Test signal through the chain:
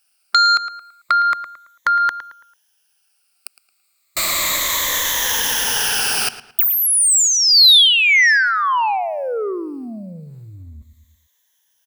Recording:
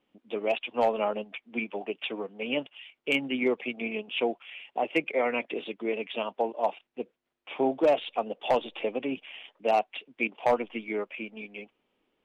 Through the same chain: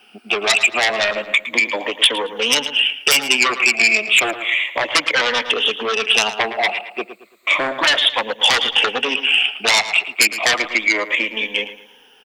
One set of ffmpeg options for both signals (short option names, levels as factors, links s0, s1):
-filter_complex "[0:a]afftfilt=real='re*pow(10,14/40*sin(2*PI*(1.1*log(max(b,1)*sr/1024/100)/log(2)-(-0.32)*(pts-256)/sr)))':imag='im*pow(10,14/40*sin(2*PI*(1.1*log(max(b,1)*sr/1024/100)/log(2)-(-0.32)*(pts-256)/sr)))':win_size=1024:overlap=0.75,asplit=2[s0][s1];[s1]acompressor=threshold=0.0141:ratio=6,volume=1[s2];[s0][s2]amix=inputs=2:normalize=0,aeval=exprs='0.398*sin(PI/2*4.47*val(0)/0.398)':c=same,asplit=2[s3][s4];[s4]adelay=111,lowpass=f=3900:p=1,volume=0.224,asplit=2[s5][s6];[s6]adelay=111,lowpass=f=3900:p=1,volume=0.36,asplit=2[s7][s8];[s8]adelay=111,lowpass=f=3900:p=1,volume=0.36,asplit=2[s9][s10];[s10]adelay=111,lowpass=f=3900:p=1,volume=0.36[s11];[s3][s5][s7][s9][s11]amix=inputs=5:normalize=0,acrossover=split=300|4300[s12][s13][s14];[s12]acompressor=threshold=0.0501:ratio=4[s15];[s13]acompressor=threshold=0.178:ratio=4[s16];[s14]acompressor=threshold=0.0891:ratio=4[s17];[s15][s16][s17]amix=inputs=3:normalize=0,tiltshelf=f=690:g=-9.5,volume=0.631"